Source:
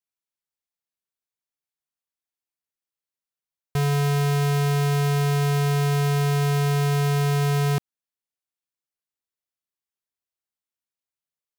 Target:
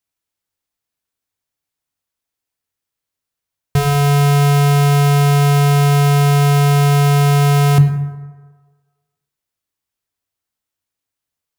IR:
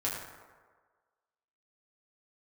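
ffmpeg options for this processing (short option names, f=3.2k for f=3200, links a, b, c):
-filter_complex "[0:a]asplit=2[a][b];[1:a]atrim=start_sample=2205,lowshelf=f=250:g=11[c];[b][c]afir=irnorm=-1:irlink=0,volume=-10dB[d];[a][d]amix=inputs=2:normalize=0,volume=6.5dB"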